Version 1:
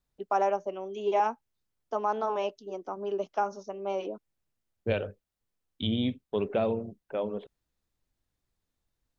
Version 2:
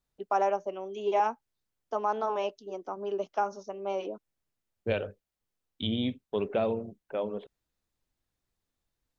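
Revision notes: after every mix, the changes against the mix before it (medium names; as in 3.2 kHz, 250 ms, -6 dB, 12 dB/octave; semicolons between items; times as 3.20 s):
master: add bass shelf 220 Hz -3.5 dB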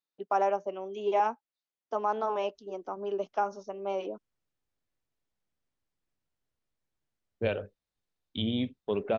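second voice: entry +2.55 s; master: add distance through air 51 m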